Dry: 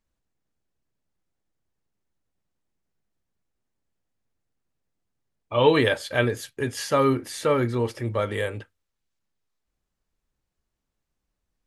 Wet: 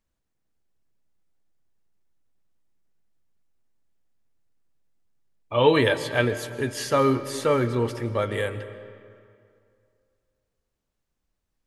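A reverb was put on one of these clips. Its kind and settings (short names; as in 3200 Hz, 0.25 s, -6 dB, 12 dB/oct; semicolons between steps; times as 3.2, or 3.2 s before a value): digital reverb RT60 2.4 s, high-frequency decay 0.65×, pre-delay 90 ms, DRR 12.5 dB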